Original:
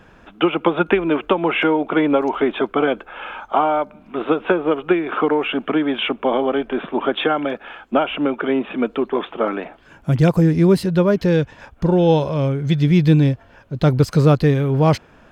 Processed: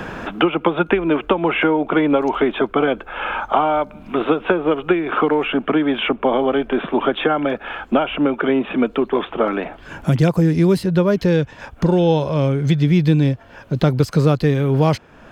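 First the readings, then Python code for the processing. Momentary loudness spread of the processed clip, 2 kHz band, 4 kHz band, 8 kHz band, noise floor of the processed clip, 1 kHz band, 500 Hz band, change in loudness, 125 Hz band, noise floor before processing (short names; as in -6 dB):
7 LU, +1.5 dB, 0.0 dB, n/a, -44 dBFS, +1.0 dB, +0.5 dB, 0.0 dB, -0.5 dB, -49 dBFS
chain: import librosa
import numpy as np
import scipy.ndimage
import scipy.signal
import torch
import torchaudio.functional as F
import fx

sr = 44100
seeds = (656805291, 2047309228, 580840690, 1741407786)

y = fx.band_squash(x, sr, depth_pct=70)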